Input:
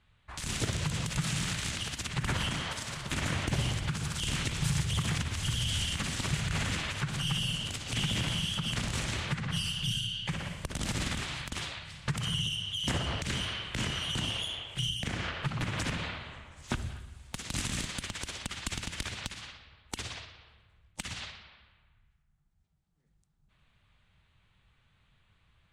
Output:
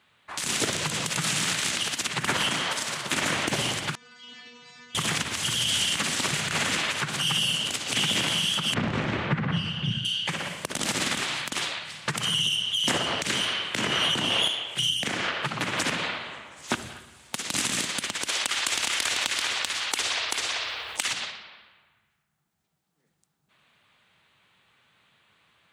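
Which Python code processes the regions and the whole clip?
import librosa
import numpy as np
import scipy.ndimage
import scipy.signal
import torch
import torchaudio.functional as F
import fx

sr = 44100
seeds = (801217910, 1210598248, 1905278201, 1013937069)

y = fx.chain(x, sr, fx.bessel_lowpass(hz=3800.0, order=6),
    fx.stiff_resonator(f0_hz=240.0, decay_s=0.72, stiffness=0.002), at=(3.95, 4.95))
y = fx.chain(y, sr, fx.lowpass(hz=2100.0, slope=12),
    fx.low_shelf(hz=320.0, db=11.5), at=(8.74, 10.05))
y = fx.chain(y, sr, fx.peak_eq(hz=9900.0, db=-8.0, octaves=2.8),
    fx.env_flatten(amount_pct=100), at=(13.79, 14.48))
y = fx.chain(y, sr, fx.peak_eq(hz=170.0, db=-13.5, octaves=1.8),
    fx.echo_single(ms=387, db=-5.0),
    fx.env_flatten(amount_pct=70), at=(18.29, 21.13))
y = scipy.signal.sosfilt(scipy.signal.butter(2, 270.0, 'highpass', fs=sr, output='sos'), y)
y = fx.high_shelf(y, sr, hz=11000.0, db=3.5)
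y = y * 10.0 ** (8.5 / 20.0)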